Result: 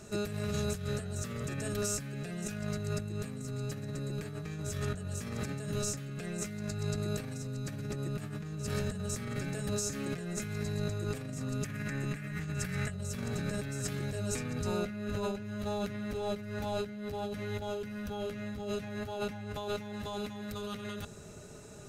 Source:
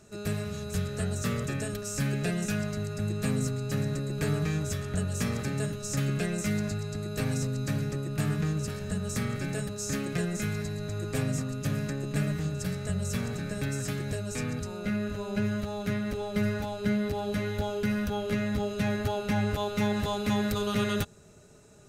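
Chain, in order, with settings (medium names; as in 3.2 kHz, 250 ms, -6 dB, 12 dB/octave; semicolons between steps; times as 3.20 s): 11.64–12.91 s: graphic EQ 500/2000/4000 Hz -6/+10/-4 dB; compressor with a negative ratio -37 dBFS, ratio -1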